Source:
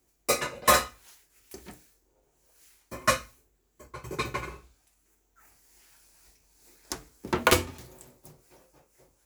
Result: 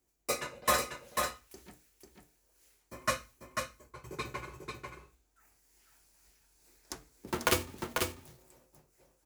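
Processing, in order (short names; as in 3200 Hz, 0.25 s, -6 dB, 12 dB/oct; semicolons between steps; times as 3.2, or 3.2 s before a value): 7.28–7.96 block floating point 3-bit; echo 0.493 s -4.5 dB; gain -7.5 dB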